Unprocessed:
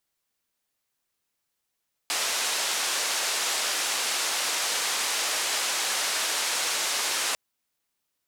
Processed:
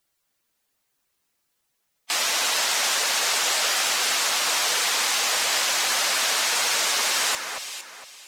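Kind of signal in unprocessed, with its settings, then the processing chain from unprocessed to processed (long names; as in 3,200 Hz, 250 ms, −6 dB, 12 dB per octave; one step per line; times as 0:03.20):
band-limited noise 500–7,900 Hz, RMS −27.5 dBFS 5.25 s
spectral magnitudes quantised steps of 15 dB
in parallel at −0.5 dB: brickwall limiter −21.5 dBFS
on the sum: delay that swaps between a low-pass and a high-pass 230 ms, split 2,200 Hz, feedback 54%, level −5.5 dB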